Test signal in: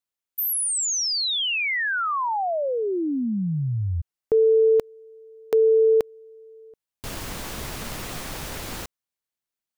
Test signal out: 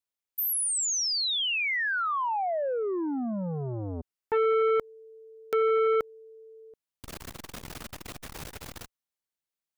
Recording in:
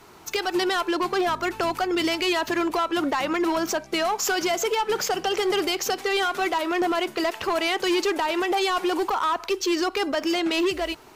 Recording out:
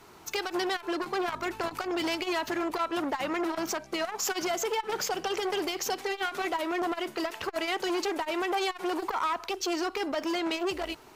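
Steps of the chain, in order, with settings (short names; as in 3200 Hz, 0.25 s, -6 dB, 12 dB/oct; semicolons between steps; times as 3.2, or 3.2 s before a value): core saturation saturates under 730 Hz; gain -3.5 dB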